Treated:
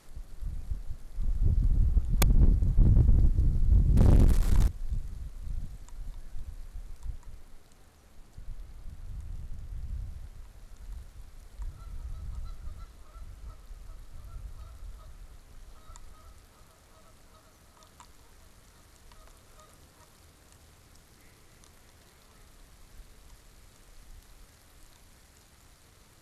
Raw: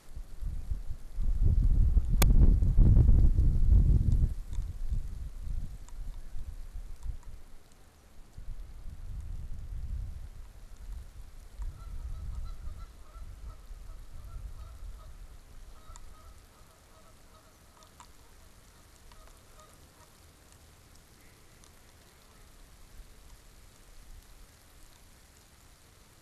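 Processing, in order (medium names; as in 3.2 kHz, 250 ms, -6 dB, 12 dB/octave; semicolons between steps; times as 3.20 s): 3.97–4.68 s: waveshaping leveller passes 5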